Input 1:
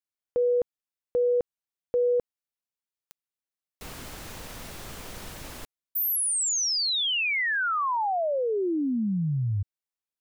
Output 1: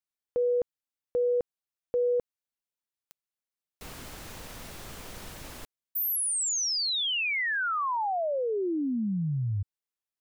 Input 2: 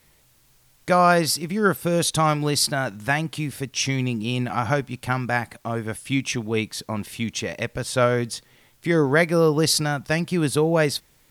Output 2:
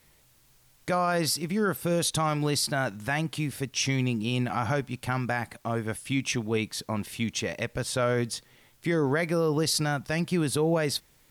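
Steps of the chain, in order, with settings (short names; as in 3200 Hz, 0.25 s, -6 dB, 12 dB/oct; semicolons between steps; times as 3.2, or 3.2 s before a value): limiter -14 dBFS; gain -2.5 dB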